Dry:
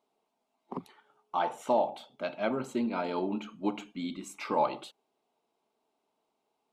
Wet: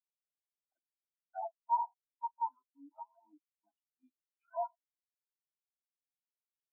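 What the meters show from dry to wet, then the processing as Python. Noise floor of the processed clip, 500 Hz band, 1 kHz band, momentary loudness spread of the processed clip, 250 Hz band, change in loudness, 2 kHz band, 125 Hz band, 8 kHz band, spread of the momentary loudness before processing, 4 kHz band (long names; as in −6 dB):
below −85 dBFS, −16.0 dB, −4.5 dB, 18 LU, −31.0 dB, −6.5 dB, below −25 dB, below −40 dB, below −30 dB, 15 LU, below −35 dB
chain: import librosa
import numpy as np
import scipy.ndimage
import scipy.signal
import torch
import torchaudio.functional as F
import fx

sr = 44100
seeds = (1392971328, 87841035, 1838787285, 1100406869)

y = fx.band_invert(x, sr, width_hz=500)
y = scipy.signal.sosfilt(scipy.signal.butter(2, 520.0, 'highpass', fs=sr, output='sos'), y)
y = fx.level_steps(y, sr, step_db=11)
y = fx.leveller(y, sr, passes=2)
y = fx.spectral_expand(y, sr, expansion=4.0)
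y = F.gain(torch.from_numpy(y), 1.0).numpy()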